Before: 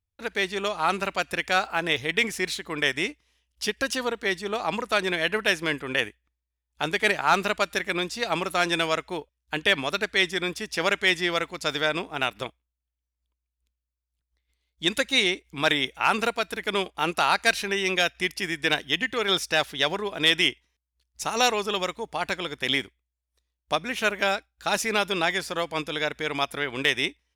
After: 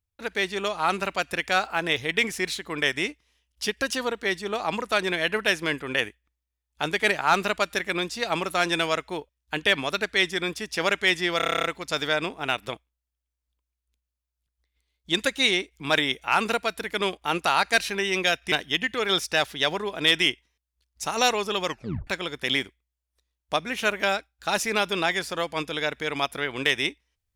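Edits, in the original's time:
0:11.37: stutter 0.03 s, 10 plays
0:18.25–0:18.71: remove
0:21.84: tape stop 0.42 s

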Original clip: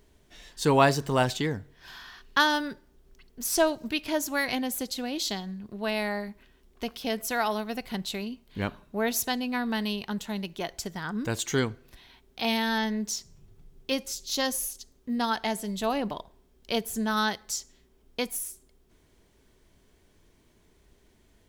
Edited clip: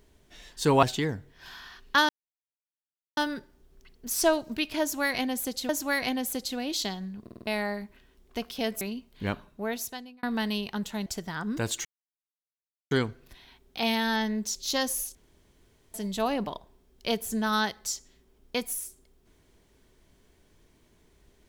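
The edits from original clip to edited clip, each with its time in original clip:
0:00.83–0:01.25: remove
0:02.51: splice in silence 1.08 s
0:04.15–0:05.03: repeat, 2 plays
0:05.68: stutter in place 0.05 s, 5 plays
0:07.27–0:08.16: remove
0:08.68–0:09.58: fade out
0:10.41–0:10.74: remove
0:11.53: splice in silence 1.06 s
0:13.17–0:14.19: remove
0:14.79–0:15.58: fill with room tone

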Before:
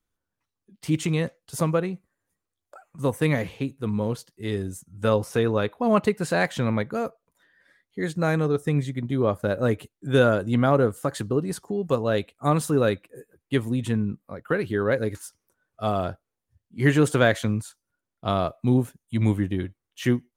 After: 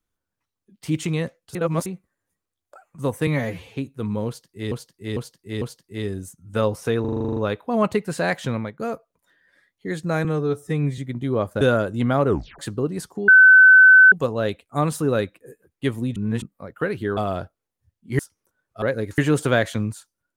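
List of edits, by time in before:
0:01.55–0:01.86: reverse
0:03.27–0:03.60: time-stretch 1.5×
0:04.10–0:04.55: repeat, 4 plays
0:05.49: stutter 0.04 s, 10 plays
0:06.61–0:06.92: fade out, to −15.5 dB
0:08.37–0:08.86: time-stretch 1.5×
0:09.49–0:10.14: remove
0:10.80: tape stop 0.32 s
0:11.81: insert tone 1,520 Hz −6.5 dBFS 0.84 s
0:13.85–0:14.11: reverse
0:14.86–0:15.22: swap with 0:15.85–0:16.87

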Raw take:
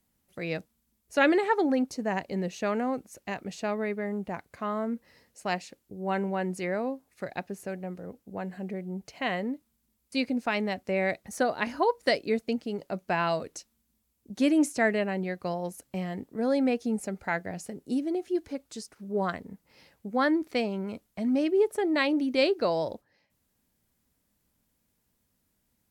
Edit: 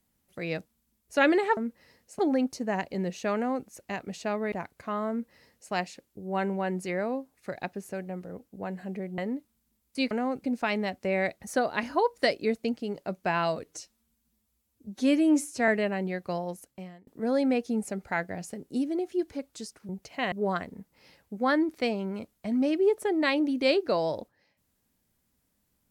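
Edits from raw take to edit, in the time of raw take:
0:02.73–0:03.06: duplicate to 0:10.28
0:03.90–0:04.26: remove
0:04.84–0:05.46: duplicate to 0:01.57
0:08.92–0:09.35: move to 0:19.05
0:13.48–0:14.84: time-stretch 1.5×
0:15.55–0:16.23: fade out

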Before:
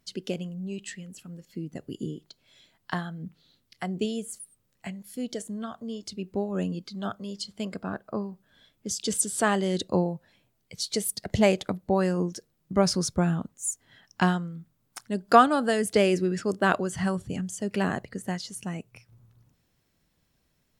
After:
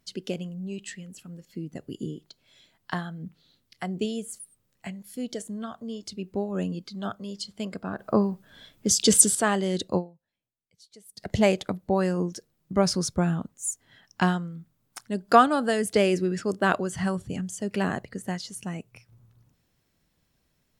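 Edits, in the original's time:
0:07.99–0:09.35: clip gain +9.5 dB
0:09.97–0:11.22: duck −23.5 dB, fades 0.41 s exponential

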